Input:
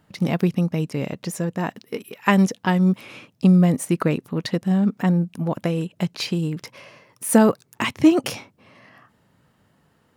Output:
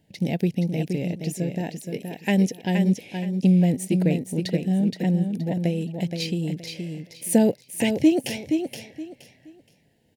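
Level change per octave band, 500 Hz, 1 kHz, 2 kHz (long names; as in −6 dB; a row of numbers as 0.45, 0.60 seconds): −2.5, −9.5, −5.5 decibels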